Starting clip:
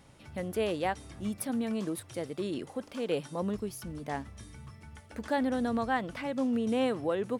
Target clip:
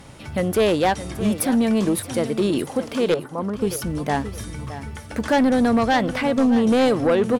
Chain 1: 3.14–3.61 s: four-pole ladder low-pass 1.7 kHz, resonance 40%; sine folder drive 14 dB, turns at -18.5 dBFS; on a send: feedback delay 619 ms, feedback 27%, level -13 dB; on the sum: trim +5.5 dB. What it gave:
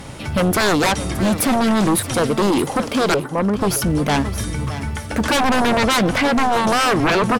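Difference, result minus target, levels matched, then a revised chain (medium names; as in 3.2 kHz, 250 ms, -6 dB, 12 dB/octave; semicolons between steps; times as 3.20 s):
sine folder: distortion +19 dB
3.14–3.61 s: four-pole ladder low-pass 1.7 kHz, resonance 40%; sine folder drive 5 dB, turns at -18.5 dBFS; on a send: feedback delay 619 ms, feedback 27%, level -13 dB; on the sum: trim +5.5 dB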